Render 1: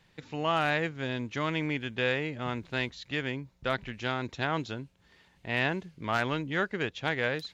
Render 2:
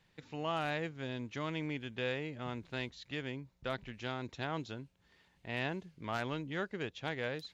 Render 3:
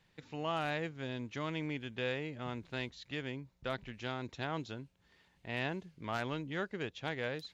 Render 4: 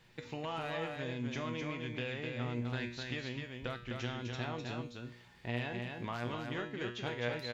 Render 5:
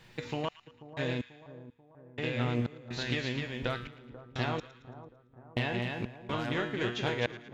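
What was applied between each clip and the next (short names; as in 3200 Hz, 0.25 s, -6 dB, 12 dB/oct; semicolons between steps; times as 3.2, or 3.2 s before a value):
dynamic EQ 1700 Hz, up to -4 dB, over -40 dBFS, Q 0.96; gain -6.5 dB
nothing audible
compressor 4:1, threshold -45 dBFS, peak gain reduction 11.5 dB; resonator 120 Hz, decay 0.51 s, harmonics all, mix 80%; echo 0.255 s -4.5 dB; gain +17 dB
step gate "xx..x....xx.xx" 62 bpm -60 dB; split-band echo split 1200 Hz, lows 0.488 s, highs 0.112 s, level -15 dB; Doppler distortion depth 0.15 ms; gain +7 dB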